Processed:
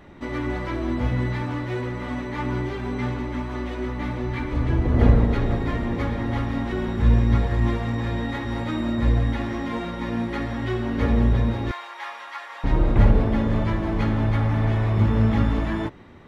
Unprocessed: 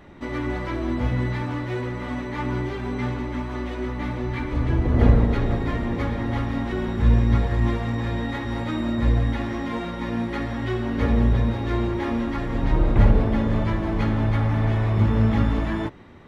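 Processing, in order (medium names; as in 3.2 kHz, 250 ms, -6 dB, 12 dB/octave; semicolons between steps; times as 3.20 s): 11.71–12.64 s: high-pass 830 Hz 24 dB/octave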